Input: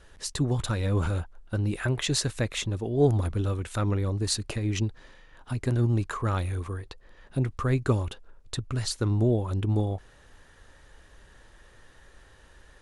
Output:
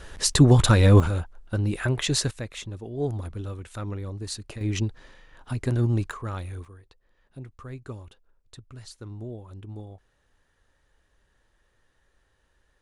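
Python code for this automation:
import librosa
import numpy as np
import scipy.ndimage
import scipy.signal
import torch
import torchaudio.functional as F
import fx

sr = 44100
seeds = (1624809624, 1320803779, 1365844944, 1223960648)

y = fx.gain(x, sr, db=fx.steps((0.0, 11.0), (1.0, 2.0), (2.31, -6.5), (4.61, 1.0), (6.11, -5.5), (6.65, -14.0)))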